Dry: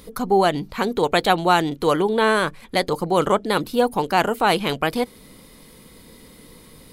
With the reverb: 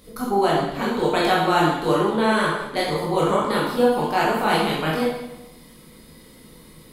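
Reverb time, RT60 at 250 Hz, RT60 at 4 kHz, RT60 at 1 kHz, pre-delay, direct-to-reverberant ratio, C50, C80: 0.95 s, 1.1 s, 0.80 s, 0.95 s, 14 ms, -5.5 dB, 0.5 dB, 3.5 dB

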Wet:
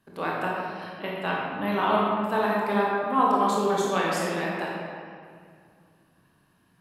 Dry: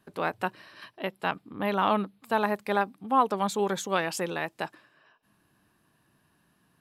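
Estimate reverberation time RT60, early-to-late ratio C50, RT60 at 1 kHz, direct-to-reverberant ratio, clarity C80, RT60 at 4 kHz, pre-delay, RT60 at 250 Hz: 2.1 s, -2.0 dB, 2.0 s, -4.5 dB, 0.5 dB, 1.3 s, 23 ms, 2.5 s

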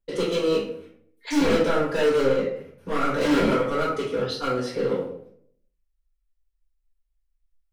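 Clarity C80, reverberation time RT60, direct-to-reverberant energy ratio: 8.0 dB, 0.65 s, -8.5 dB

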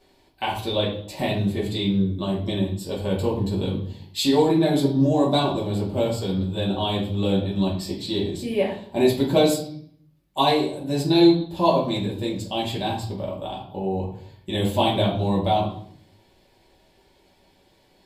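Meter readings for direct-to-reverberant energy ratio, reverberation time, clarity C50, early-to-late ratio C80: -4.5 dB, 0.60 s, 7.0 dB, 11.5 dB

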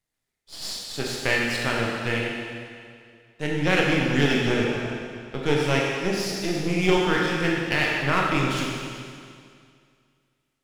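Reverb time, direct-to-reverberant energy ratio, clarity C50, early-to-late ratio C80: 2.2 s, -3.0 dB, -1.0 dB, 1.0 dB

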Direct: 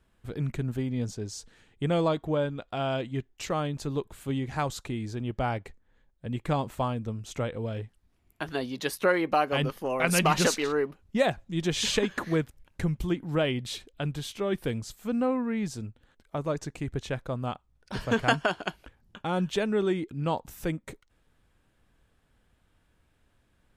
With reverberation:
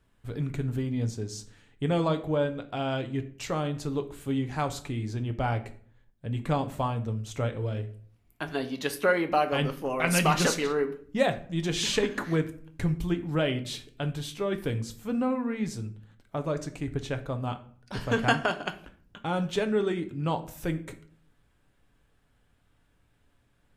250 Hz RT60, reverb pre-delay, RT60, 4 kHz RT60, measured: 0.75 s, 7 ms, 0.55 s, 0.35 s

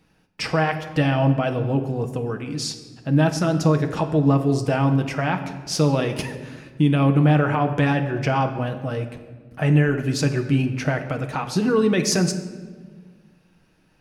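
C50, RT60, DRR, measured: 10.0 dB, 1.5 s, 4.5 dB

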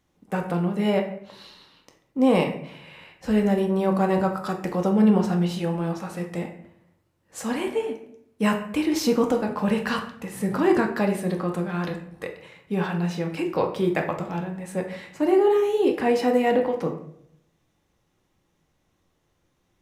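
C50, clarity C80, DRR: 8.5 dB, 12.0 dB, 2.0 dB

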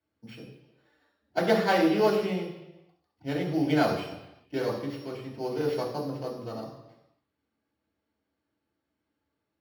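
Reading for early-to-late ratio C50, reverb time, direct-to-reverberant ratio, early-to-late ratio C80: 6.0 dB, 1.0 s, -3.0 dB, 8.0 dB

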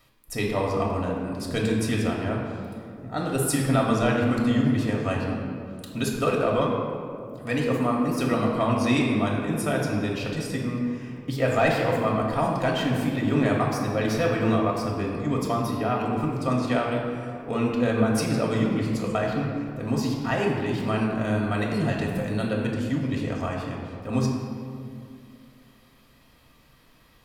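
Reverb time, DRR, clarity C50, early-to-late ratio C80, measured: 2.4 s, -2.5 dB, 1.5 dB, 3.0 dB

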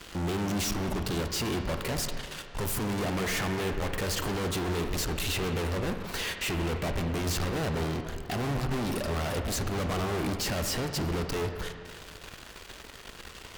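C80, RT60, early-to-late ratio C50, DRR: 7.5 dB, 2.1 s, 6.5 dB, 5.5 dB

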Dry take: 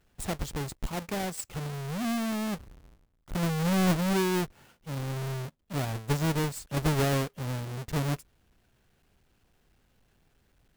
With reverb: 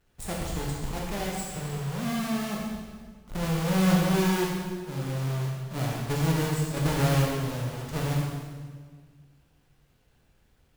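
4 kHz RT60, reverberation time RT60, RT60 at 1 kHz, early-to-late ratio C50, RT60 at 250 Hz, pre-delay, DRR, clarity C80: 1.4 s, 1.6 s, 1.5 s, 0.0 dB, 2.0 s, 19 ms, -3.0 dB, 2.0 dB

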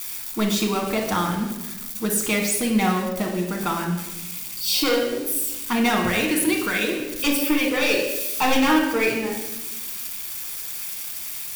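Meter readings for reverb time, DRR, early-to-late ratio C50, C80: 1.1 s, 0.5 dB, 5.0 dB, 7.5 dB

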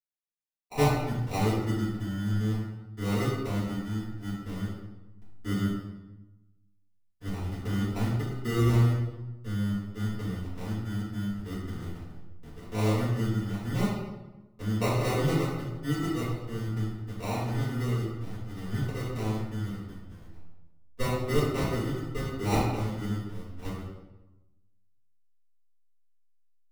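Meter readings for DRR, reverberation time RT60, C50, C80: -12.0 dB, 1.1 s, 0.5 dB, 3.5 dB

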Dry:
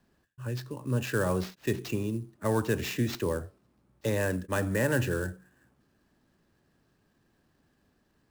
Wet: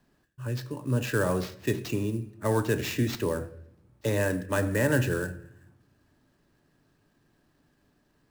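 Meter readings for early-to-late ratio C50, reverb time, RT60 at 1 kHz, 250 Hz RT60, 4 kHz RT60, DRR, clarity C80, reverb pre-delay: 16.0 dB, 0.75 s, 0.65 s, 1.1 s, 0.60 s, 10.5 dB, 18.5 dB, 3 ms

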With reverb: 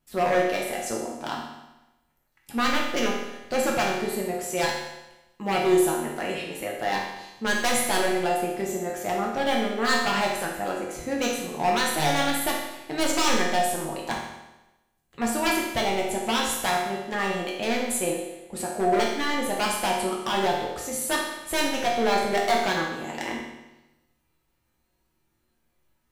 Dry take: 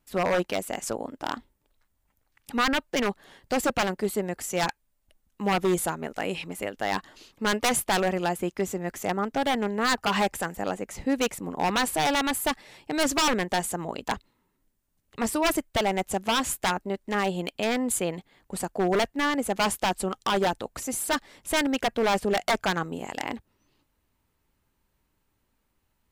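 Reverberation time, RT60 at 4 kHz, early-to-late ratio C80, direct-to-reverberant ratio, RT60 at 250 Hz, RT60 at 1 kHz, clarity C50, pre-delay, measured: 1.0 s, 1.0 s, 5.0 dB, -3.5 dB, 1.0 s, 1.0 s, 2.0 dB, 5 ms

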